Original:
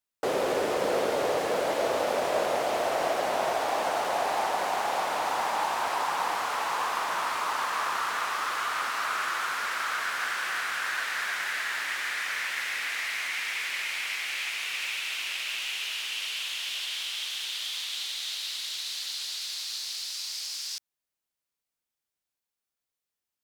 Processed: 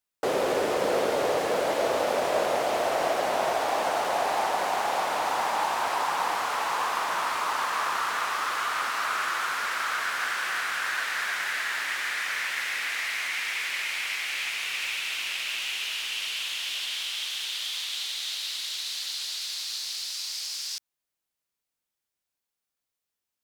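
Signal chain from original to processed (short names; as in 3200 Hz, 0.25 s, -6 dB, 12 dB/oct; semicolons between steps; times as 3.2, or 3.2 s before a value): 14.33–16.96 low shelf 150 Hz +7.5 dB; gain +1.5 dB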